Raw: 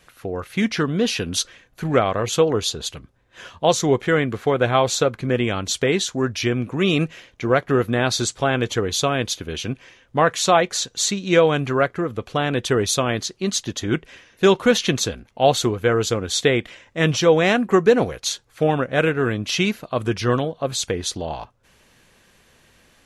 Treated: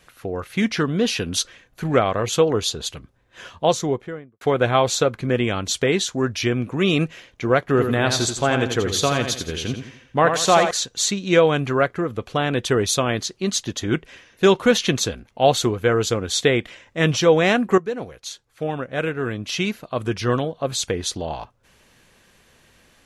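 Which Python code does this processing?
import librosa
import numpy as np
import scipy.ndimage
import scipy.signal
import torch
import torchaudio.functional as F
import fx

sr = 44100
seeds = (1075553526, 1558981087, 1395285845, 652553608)

y = fx.studio_fade_out(x, sr, start_s=3.52, length_s=0.89)
y = fx.echo_feedback(y, sr, ms=85, feedback_pct=37, wet_db=-7.0, at=(7.63, 10.71))
y = fx.edit(y, sr, fx.fade_in_from(start_s=17.78, length_s=2.97, floor_db=-13.5), tone=tone)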